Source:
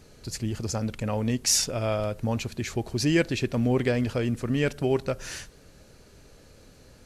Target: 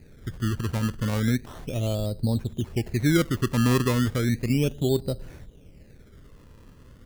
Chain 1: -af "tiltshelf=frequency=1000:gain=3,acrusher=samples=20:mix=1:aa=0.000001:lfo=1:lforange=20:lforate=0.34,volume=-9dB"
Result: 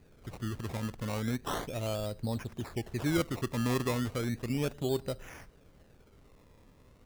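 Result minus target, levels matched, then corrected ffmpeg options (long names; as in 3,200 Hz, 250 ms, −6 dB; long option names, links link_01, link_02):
1,000 Hz band +4.5 dB
-af "tiltshelf=frequency=1000:gain=14,acrusher=samples=20:mix=1:aa=0.000001:lfo=1:lforange=20:lforate=0.34,volume=-9dB"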